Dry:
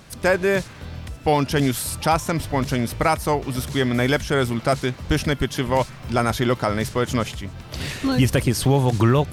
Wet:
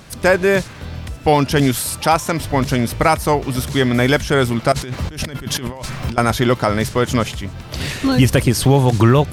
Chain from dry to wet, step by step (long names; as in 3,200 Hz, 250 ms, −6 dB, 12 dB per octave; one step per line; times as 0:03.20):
0:01.81–0:02.41: low-shelf EQ 160 Hz −8 dB
0:04.72–0:06.18: compressor whose output falls as the input rises −31 dBFS, ratio −1
level +5 dB